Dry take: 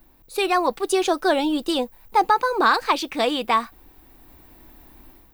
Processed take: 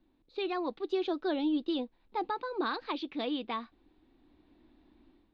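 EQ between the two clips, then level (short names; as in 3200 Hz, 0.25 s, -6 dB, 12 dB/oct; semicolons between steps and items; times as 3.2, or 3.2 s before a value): ladder low-pass 4400 Hz, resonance 55%; air absorption 110 m; bell 290 Hz +12 dB 1.2 oct; -8.0 dB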